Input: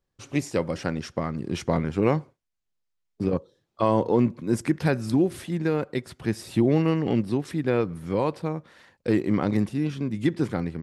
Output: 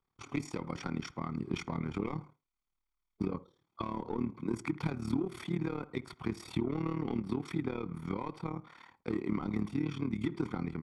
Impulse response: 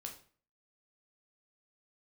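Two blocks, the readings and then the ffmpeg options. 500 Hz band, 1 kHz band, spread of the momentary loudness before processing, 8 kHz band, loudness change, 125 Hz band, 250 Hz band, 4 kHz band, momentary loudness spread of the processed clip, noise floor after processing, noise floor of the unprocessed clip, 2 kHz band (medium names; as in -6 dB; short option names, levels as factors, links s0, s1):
-14.5 dB, -10.5 dB, 8 LU, -11.5 dB, -11.0 dB, -10.5 dB, -10.0 dB, -9.0 dB, 6 LU, under -85 dBFS, -79 dBFS, -10.0 dB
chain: -filter_complex "[0:a]asplit=2[s0][s1];[s1]highpass=f=720:p=1,volume=6.31,asoftclip=type=tanh:threshold=0.398[s2];[s0][s2]amix=inputs=2:normalize=0,lowpass=f=1200:p=1,volume=0.501,acompressor=threshold=0.0708:ratio=6,aecho=1:1:0.9:0.7,acrossover=split=450|3000[s3][s4][s5];[s4]acompressor=threshold=0.0178:ratio=2.5[s6];[s3][s6][s5]amix=inputs=3:normalize=0,tremolo=f=37:d=0.857,asplit=2[s7][s8];[s8]adelay=67,lowpass=f=1200:p=1,volume=0.112,asplit=2[s9][s10];[s10]adelay=67,lowpass=f=1200:p=1,volume=0.25[s11];[s9][s11]amix=inputs=2:normalize=0[s12];[s7][s12]amix=inputs=2:normalize=0,volume=0.631"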